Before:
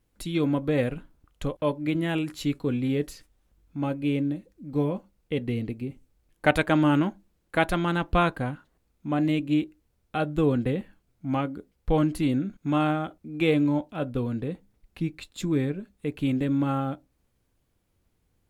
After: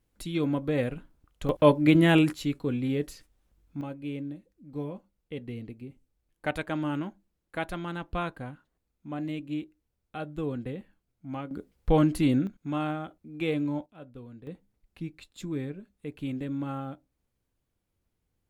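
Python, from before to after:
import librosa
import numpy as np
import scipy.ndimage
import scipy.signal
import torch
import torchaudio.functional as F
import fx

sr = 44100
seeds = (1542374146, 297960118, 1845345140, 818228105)

y = fx.gain(x, sr, db=fx.steps((0.0, -3.0), (1.49, 7.0), (2.33, -2.5), (3.81, -9.5), (11.51, 1.0), (12.47, -6.5), (13.86, -17.0), (14.47, -8.0)))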